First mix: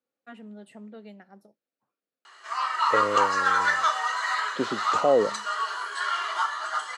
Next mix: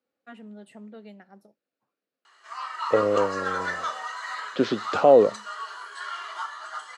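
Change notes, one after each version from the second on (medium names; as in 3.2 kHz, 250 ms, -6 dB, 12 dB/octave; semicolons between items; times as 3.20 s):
second voice +5.5 dB; background -7.0 dB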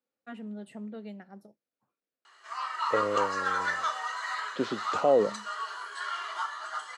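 first voice: add bass shelf 250 Hz +7 dB; second voice -7.5 dB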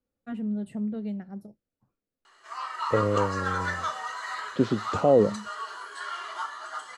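master: remove frequency weighting A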